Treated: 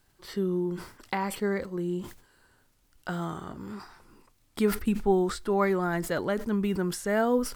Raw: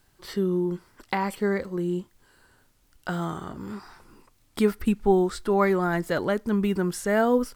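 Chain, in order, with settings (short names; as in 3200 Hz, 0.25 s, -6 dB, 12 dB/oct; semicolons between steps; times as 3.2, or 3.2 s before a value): sustainer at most 110 dB/s; gain -3.5 dB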